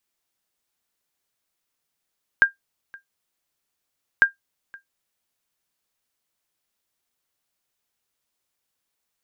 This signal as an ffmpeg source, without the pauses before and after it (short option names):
-f lavfi -i "aevalsrc='0.531*(sin(2*PI*1600*mod(t,1.8))*exp(-6.91*mod(t,1.8)/0.13)+0.0473*sin(2*PI*1600*max(mod(t,1.8)-0.52,0))*exp(-6.91*max(mod(t,1.8)-0.52,0)/0.13))':d=3.6:s=44100"